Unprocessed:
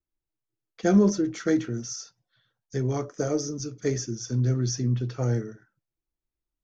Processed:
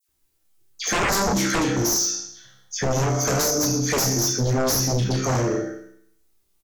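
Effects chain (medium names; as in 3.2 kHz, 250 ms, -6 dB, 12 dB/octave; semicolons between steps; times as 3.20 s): treble shelf 4.4 kHz +10.5 dB; chord resonator C2 sus4, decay 0.68 s; speakerphone echo 160 ms, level -14 dB; in parallel at +1 dB: compression, threshold -46 dBFS, peak gain reduction 19 dB; on the sum: phase dispersion lows, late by 84 ms, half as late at 1.8 kHz; sine folder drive 18 dB, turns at -20 dBFS; trim +2 dB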